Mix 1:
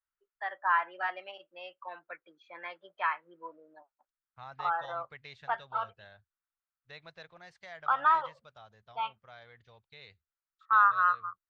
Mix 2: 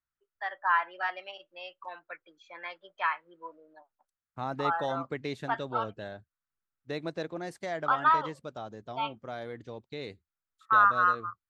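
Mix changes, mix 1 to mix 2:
second voice: remove amplifier tone stack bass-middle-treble 10-0-10; master: remove distance through air 190 m

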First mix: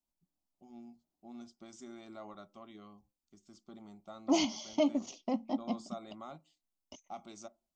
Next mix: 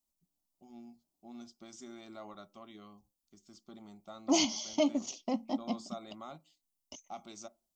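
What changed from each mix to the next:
first voice: add low-pass 6 kHz 12 dB/octave; master: add treble shelf 4.6 kHz +11 dB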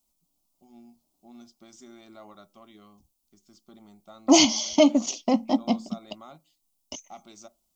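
second voice +11.0 dB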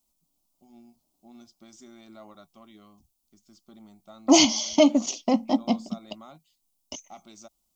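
reverb: off

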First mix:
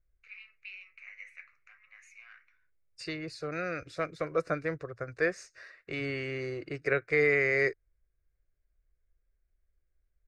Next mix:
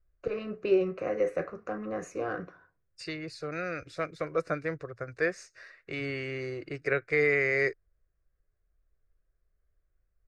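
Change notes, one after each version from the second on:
first voice: remove ladder high-pass 2.1 kHz, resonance 80%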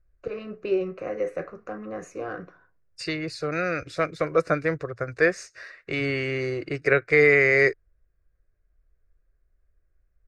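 second voice +8.0 dB

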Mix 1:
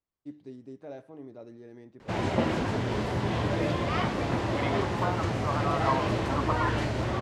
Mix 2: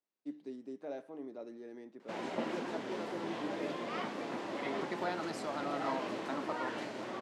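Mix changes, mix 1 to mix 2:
second voice: remove resonant low-pass 1.1 kHz, resonance Q 6.4; background -9.5 dB; master: add high-pass 210 Hz 24 dB/octave

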